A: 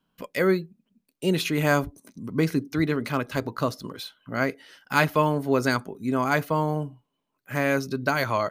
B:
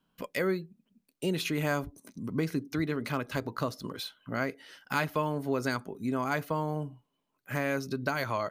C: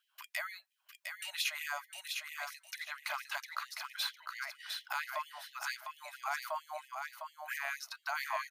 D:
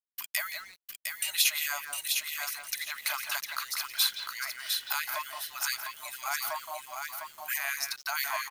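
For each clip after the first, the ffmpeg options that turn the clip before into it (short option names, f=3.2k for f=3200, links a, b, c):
-af "acompressor=threshold=-30dB:ratio=2,volume=-1dB"
-filter_complex "[0:a]alimiter=level_in=0.5dB:limit=-24dB:level=0:latency=1:release=211,volume=-0.5dB,asplit=2[a][b];[b]aecho=0:1:706|1412|2118:0.562|0.118|0.0248[c];[a][c]amix=inputs=2:normalize=0,afftfilt=real='re*gte(b*sr/1024,570*pow(1800/570,0.5+0.5*sin(2*PI*4.4*pts/sr)))':imag='im*gte(b*sr/1024,570*pow(1800/570,0.5+0.5*sin(2*PI*4.4*pts/sr)))':win_size=1024:overlap=0.75,volume=2.5dB"
-filter_complex "[0:a]asplit=2[a][b];[b]adelay=170,highpass=300,lowpass=3.4k,asoftclip=type=hard:threshold=-30dB,volume=-7dB[c];[a][c]amix=inputs=2:normalize=0,crystalizer=i=4.5:c=0,acrusher=bits=7:mix=0:aa=0.5"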